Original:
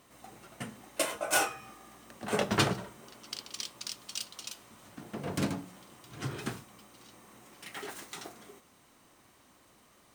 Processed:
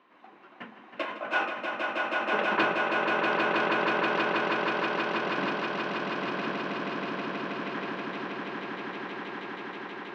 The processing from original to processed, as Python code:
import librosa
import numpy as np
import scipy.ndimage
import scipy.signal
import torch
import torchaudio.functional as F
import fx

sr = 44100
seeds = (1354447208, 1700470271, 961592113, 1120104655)

y = fx.cabinet(x, sr, low_hz=200.0, low_slope=24, high_hz=3400.0, hz=(350.0, 1000.0, 1600.0, 2500.0), db=(5, 9, 7, 4))
y = fx.echo_swell(y, sr, ms=160, loudest=8, wet_db=-3.0)
y = y * librosa.db_to_amplitude(-3.5)